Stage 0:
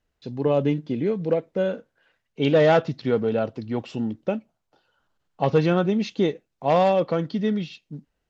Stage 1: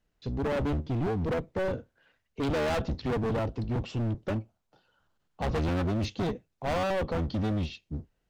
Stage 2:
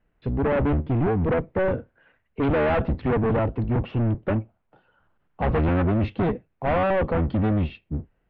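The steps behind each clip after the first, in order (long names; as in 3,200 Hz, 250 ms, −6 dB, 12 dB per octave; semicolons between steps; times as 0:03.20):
sub-octave generator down 1 octave, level +1 dB; dynamic equaliser 2,200 Hz, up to −4 dB, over −38 dBFS, Q 0.87; gain into a clipping stage and back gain 25 dB; level −1.5 dB
low-pass filter 2,500 Hz 24 dB per octave; level +7 dB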